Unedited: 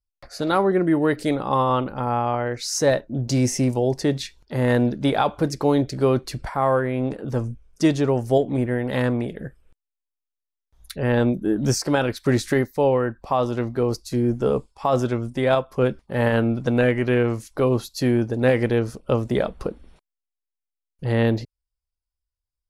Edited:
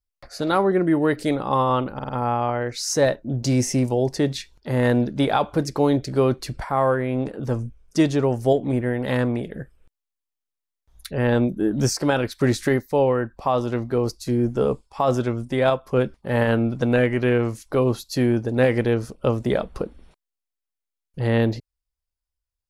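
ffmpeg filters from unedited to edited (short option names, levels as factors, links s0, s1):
-filter_complex "[0:a]asplit=4[s0][s1][s2][s3];[s0]atrim=end=1.992[s4];[s1]atrim=start=1.938:end=1.992[s5];[s2]atrim=start=1.938:end=1.992[s6];[s3]atrim=start=1.938[s7];[s4][s5]acrossfade=d=0.004:c1=hsin:c2=hsin[s8];[s8][s6]acrossfade=d=0.004:c1=hsin:c2=hsin[s9];[s9][s7]acrossfade=d=0.004:c1=hsin:c2=hsin"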